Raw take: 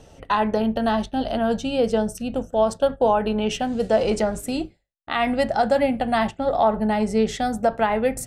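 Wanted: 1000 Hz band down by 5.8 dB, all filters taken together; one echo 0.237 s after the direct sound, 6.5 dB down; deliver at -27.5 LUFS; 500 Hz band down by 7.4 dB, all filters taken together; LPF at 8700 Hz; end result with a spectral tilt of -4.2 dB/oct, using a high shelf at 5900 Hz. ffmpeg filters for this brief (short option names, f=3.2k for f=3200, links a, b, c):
-af "lowpass=8.7k,equalizer=f=500:t=o:g=-8,equalizer=f=1k:t=o:g=-4,highshelf=f=5.9k:g=-5,aecho=1:1:237:0.473,volume=-1.5dB"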